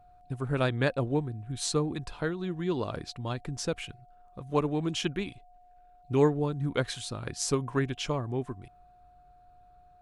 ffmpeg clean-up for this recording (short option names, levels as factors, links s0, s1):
-af "bandreject=f=720:w=30"